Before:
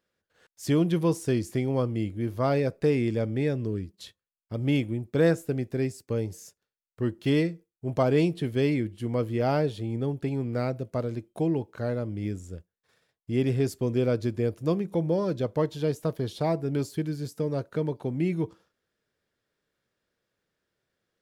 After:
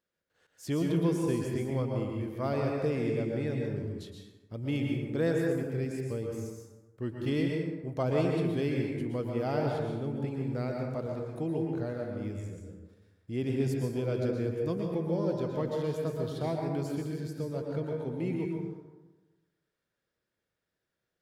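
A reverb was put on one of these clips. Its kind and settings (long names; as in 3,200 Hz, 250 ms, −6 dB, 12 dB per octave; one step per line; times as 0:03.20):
dense smooth reverb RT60 1.2 s, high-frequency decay 0.5×, pre-delay 105 ms, DRR 0 dB
level −7.5 dB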